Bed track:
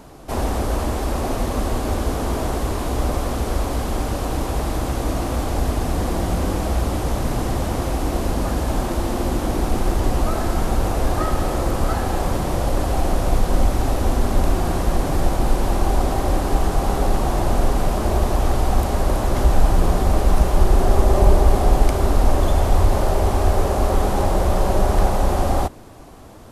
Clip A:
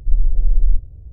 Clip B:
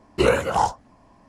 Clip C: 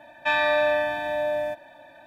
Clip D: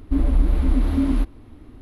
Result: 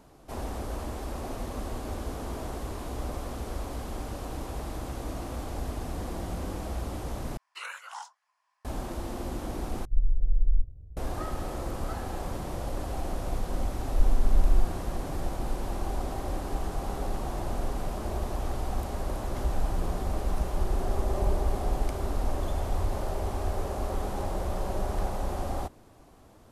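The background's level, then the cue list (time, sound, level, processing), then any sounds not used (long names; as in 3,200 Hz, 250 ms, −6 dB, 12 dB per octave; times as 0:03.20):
bed track −13 dB
0:07.37: overwrite with B −13 dB + high-pass filter 1,100 Hz 24 dB per octave
0:09.85: overwrite with A −9 dB
0:13.88: mix in A −7.5 dB
not used: C, D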